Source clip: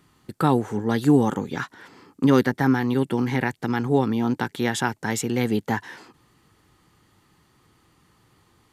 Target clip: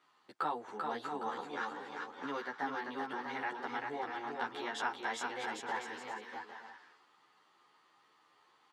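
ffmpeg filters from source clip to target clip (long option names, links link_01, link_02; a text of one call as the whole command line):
ffmpeg -i in.wav -filter_complex "[0:a]equalizer=frequency=2200:width_type=o:width=2.8:gain=-13.5,acompressor=threshold=-31dB:ratio=2,asuperpass=centerf=1800:order=4:qfactor=0.65,aecho=1:1:390|643.5|808.3|915.4|985:0.631|0.398|0.251|0.158|0.1,asplit=2[link_01][link_02];[link_02]adelay=11.6,afreqshift=2.6[link_03];[link_01][link_03]amix=inputs=2:normalize=1,volume=9dB" out.wav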